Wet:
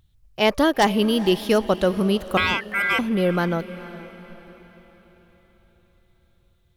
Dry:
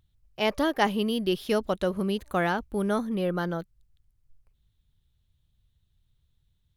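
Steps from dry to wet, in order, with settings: wavefolder -15 dBFS; 2.37–2.99 s: ring modulator 1.8 kHz; echo that smears into a reverb 463 ms, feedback 46%, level -16 dB; trim +7 dB

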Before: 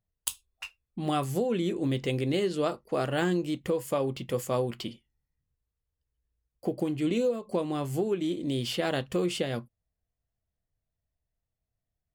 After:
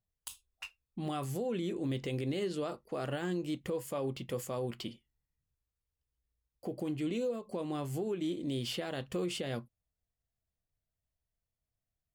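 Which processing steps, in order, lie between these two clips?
peak limiter -22.5 dBFS, peak gain reduction 11 dB; trim -4.5 dB

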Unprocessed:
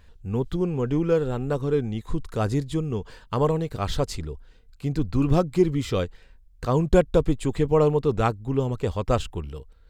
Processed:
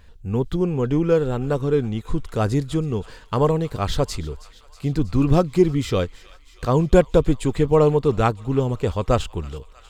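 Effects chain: feedback echo behind a high-pass 320 ms, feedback 71%, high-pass 1.5 kHz, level -17.5 dB; trim +3.5 dB

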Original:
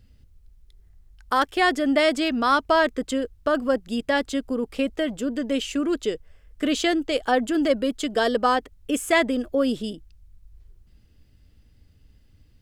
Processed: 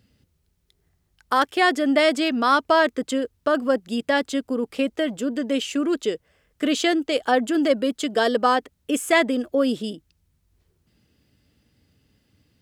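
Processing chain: high-pass 140 Hz 12 dB/octave; trim +1.5 dB

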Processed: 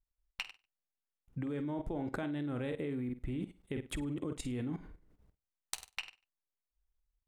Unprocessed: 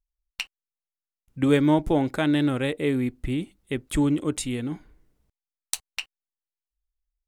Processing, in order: treble shelf 2.8 kHz -12 dB; compression 8:1, threshold -31 dBFS, peak gain reduction 15.5 dB; flutter echo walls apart 8.3 m, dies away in 0.29 s; level held to a coarse grid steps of 14 dB; trim +5.5 dB

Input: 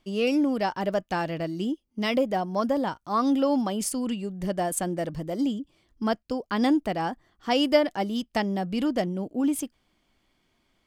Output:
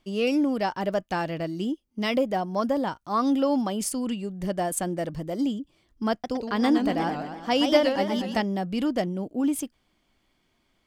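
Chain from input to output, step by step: 6.11–8.42 s: modulated delay 121 ms, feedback 58%, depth 195 cents, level -6 dB

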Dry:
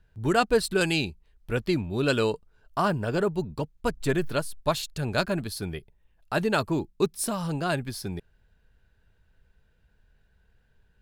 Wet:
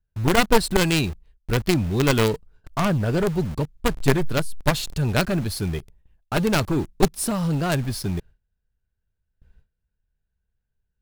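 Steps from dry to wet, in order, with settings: one-sided wavefolder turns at -22 dBFS; gate with hold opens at -51 dBFS; bass shelf 230 Hz +8.5 dB; in parallel at -9.5 dB: companded quantiser 2-bit

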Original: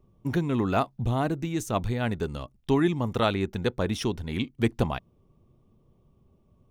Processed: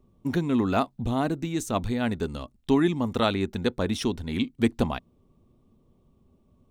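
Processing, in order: graphic EQ with 31 bands 125 Hz -6 dB, 250 Hz +6 dB, 4 kHz +4 dB, 8 kHz +4 dB

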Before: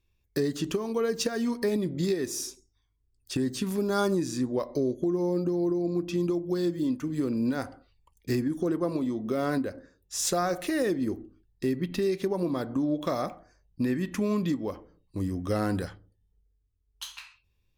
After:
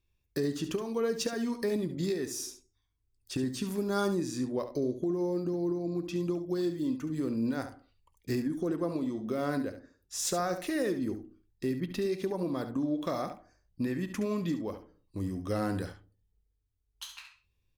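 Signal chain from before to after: delay 70 ms -10.5 dB; trim -4 dB

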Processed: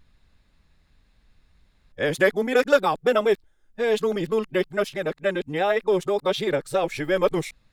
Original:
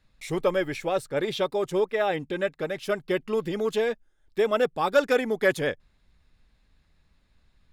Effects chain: reverse the whole clip; trim +3 dB

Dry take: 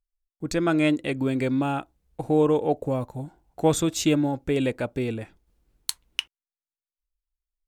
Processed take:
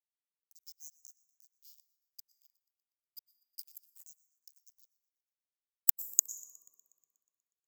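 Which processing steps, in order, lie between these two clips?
split-band scrambler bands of 4 kHz; inverted gate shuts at -24 dBFS, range -27 dB; upward compressor, threshold -52 dBFS; FFT band-reject 1.2–4.8 kHz; crossover distortion -55 dBFS; treble shelf 11 kHz +8 dB; plate-style reverb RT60 2.3 s, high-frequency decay 0.3×, pre-delay 90 ms, DRR 16 dB; sine folder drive 6 dB, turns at -7 dBFS; differentiator; on a send: feedback echo behind a high-pass 121 ms, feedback 61%, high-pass 4.5 kHz, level -23.5 dB

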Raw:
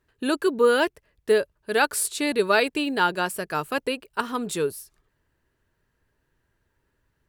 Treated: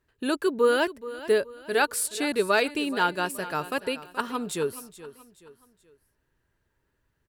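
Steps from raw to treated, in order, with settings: feedback delay 426 ms, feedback 39%, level -15.5 dB; trim -2.5 dB

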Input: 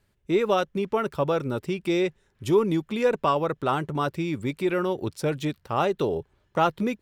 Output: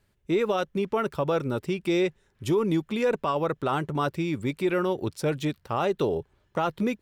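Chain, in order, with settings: peak limiter -16 dBFS, peak gain reduction 7 dB

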